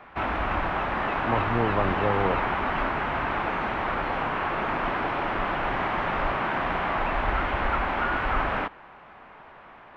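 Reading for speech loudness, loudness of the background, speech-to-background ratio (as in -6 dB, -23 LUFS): -29.0 LUFS, -27.0 LUFS, -2.0 dB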